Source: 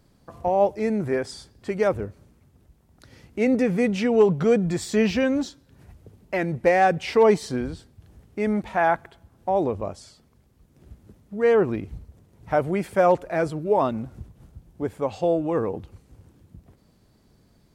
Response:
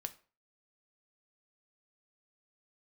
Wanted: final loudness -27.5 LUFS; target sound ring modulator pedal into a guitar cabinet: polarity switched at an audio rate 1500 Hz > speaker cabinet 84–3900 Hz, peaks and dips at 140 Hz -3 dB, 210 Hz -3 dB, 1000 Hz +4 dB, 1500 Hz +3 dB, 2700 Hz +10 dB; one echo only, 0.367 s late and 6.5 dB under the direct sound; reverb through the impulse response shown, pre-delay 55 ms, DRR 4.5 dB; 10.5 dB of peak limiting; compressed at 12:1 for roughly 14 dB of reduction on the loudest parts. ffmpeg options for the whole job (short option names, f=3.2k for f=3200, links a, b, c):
-filter_complex "[0:a]acompressor=threshold=-27dB:ratio=12,alimiter=limit=-24dB:level=0:latency=1,aecho=1:1:367:0.473,asplit=2[a][b];[1:a]atrim=start_sample=2205,adelay=55[c];[b][c]afir=irnorm=-1:irlink=0,volume=-2dB[d];[a][d]amix=inputs=2:normalize=0,aeval=exprs='val(0)*sgn(sin(2*PI*1500*n/s))':c=same,highpass=84,equalizer=f=140:t=q:w=4:g=-3,equalizer=f=210:t=q:w=4:g=-3,equalizer=f=1k:t=q:w=4:g=4,equalizer=f=1.5k:t=q:w=4:g=3,equalizer=f=2.7k:t=q:w=4:g=10,lowpass=f=3.9k:w=0.5412,lowpass=f=3.9k:w=1.3066,volume=1.5dB"